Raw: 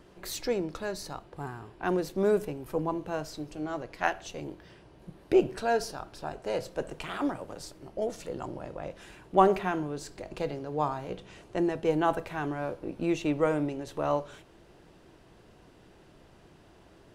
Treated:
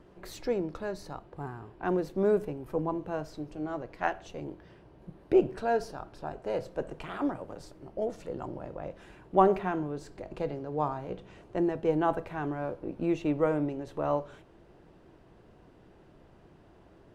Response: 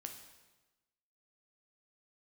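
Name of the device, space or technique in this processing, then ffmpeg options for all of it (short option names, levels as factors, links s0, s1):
through cloth: -af "highshelf=f=2500:g=-12"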